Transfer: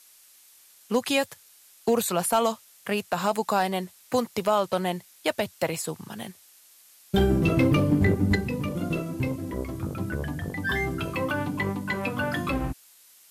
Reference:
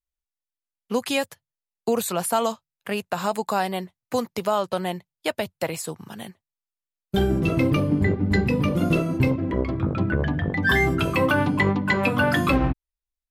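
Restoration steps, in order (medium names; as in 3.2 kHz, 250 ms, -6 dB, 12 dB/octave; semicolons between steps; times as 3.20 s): clip repair -13 dBFS; noise print and reduce 30 dB; gain correction +7.5 dB, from 8.35 s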